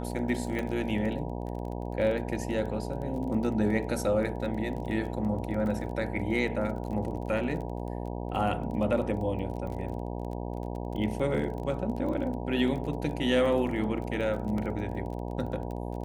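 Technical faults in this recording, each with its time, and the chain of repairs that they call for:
mains buzz 60 Hz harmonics 16 −35 dBFS
surface crackle 24 per second −36 dBFS
0:00.59: click −20 dBFS
0:14.58: drop-out 2.7 ms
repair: click removal
hum removal 60 Hz, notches 16
repair the gap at 0:14.58, 2.7 ms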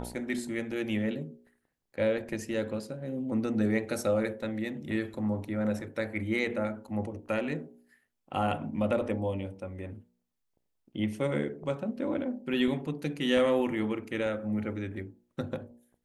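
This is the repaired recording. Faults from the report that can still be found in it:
none of them is left

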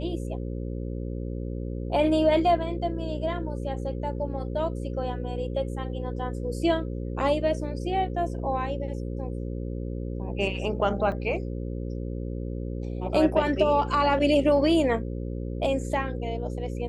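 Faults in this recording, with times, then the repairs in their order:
mains buzz 60 Hz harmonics 9 −32 dBFS
0:11.12: drop-out 2.7 ms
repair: hum removal 60 Hz, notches 9
repair the gap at 0:11.12, 2.7 ms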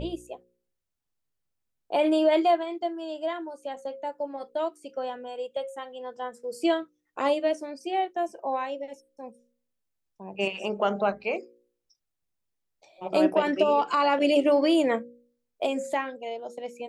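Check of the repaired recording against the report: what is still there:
none of them is left

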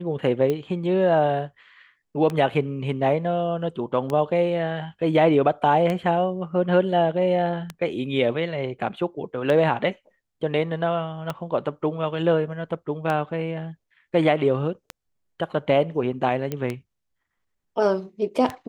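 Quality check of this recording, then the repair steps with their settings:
scratch tick 33 1/3 rpm −14 dBFS
0:16.52: click −14 dBFS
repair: click removal

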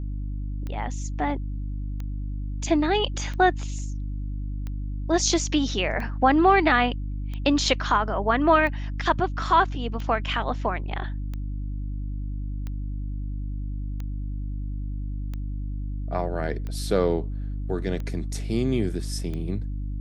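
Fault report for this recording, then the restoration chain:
mains hum 50 Hz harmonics 6 −30 dBFS
scratch tick 45 rpm −22 dBFS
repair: click removal
hum removal 50 Hz, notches 6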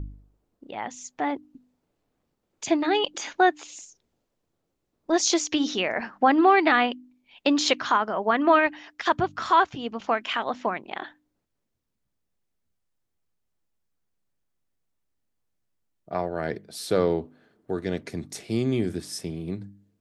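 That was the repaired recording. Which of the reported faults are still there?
none of them is left

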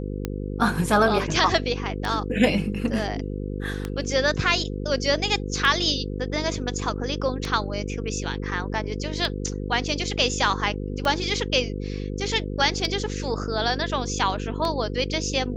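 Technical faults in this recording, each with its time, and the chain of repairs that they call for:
mains buzz 50 Hz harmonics 10 −30 dBFS
scratch tick 33 1/3 rpm −13 dBFS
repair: click removal
hum removal 50 Hz, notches 10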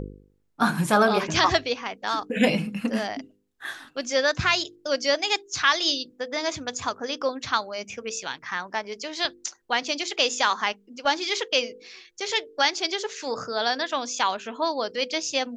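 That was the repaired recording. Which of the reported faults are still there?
none of them is left

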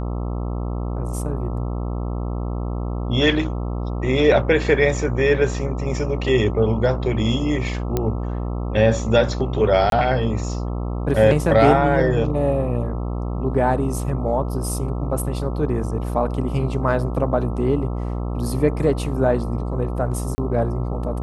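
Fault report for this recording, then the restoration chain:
mains buzz 60 Hz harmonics 22 −25 dBFS
0:07.97: click −8 dBFS
0:09.90–0:09.92: drop-out 22 ms
0:20.35–0:20.38: drop-out 30 ms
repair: click removal
hum removal 60 Hz, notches 22
repair the gap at 0:09.90, 22 ms
repair the gap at 0:20.35, 30 ms

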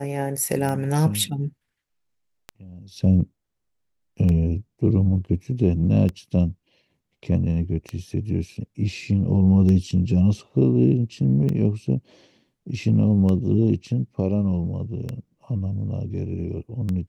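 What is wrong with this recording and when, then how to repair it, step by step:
scratch tick 33 1/3 rpm −16 dBFS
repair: click removal

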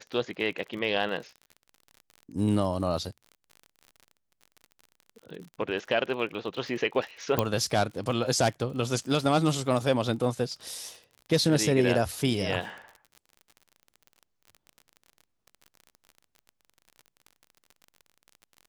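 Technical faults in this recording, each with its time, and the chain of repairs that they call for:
surface crackle 44 per second −38 dBFS
0:07.39: click −9 dBFS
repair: click removal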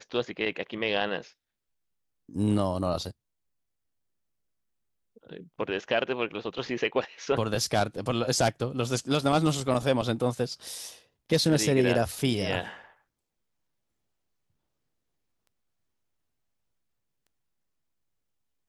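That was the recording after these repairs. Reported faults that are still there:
0:07.39: click

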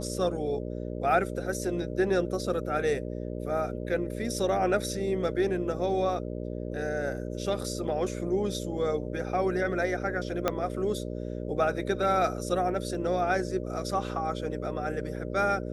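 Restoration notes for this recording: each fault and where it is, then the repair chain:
mains buzz 60 Hz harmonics 10 −35 dBFS
0:10.48: click −11 dBFS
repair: click removal
hum removal 60 Hz, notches 10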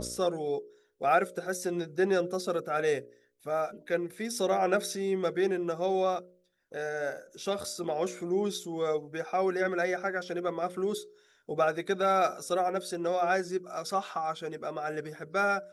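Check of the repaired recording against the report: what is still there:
0:10.48: click

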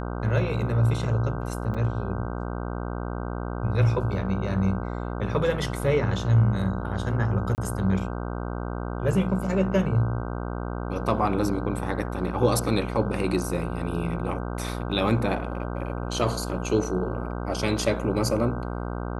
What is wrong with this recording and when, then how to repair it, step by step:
mains buzz 60 Hz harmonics 26 −31 dBFS
0:01.74–0:01.75: drop-out 5.7 ms
0:07.55–0:07.58: drop-out 29 ms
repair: hum removal 60 Hz, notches 26
repair the gap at 0:01.74, 5.7 ms
repair the gap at 0:07.55, 29 ms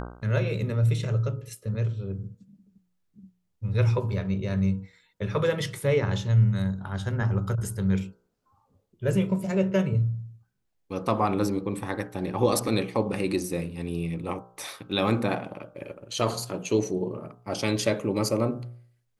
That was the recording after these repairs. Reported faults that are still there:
none of them is left

